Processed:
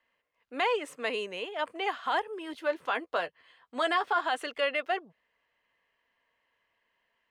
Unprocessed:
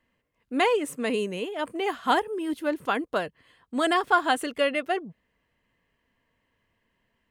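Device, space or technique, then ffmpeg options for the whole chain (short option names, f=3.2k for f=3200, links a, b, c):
DJ mixer with the lows and highs turned down: -filter_complex "[0:a]acrossover=split=480 5900:gain=0.126 1 0.178[a][b][c];[a][b][c]amix=inputs=3:normalize=0,alimiter=limit=-18.5dB:level=0:latency=1:release=25,asettb=1/sr,asplit=3[d][e][f];[d]atrim=end=2.534[g];[e]atrim=start=2.53:end=4.21,asetpts=PTS-STARTPTS,afade=t=in:d=0.004:c=qsin,afade=t=out:st=1.676:d=0.004:c=qsin,asplit=2[h][i];[i]adelay=12,volume=-8.5dB[j];[h][j]amix=inputs=2:normalize=0,atrim=end_sample=74088[k];[f]atrim=start=4.206[l];[g][k]acrossfade=d=0.004:c1=hsin:c2=qsin[m];[m][l]acrossfade=d=0.004:c1=qsin:c2=hsin"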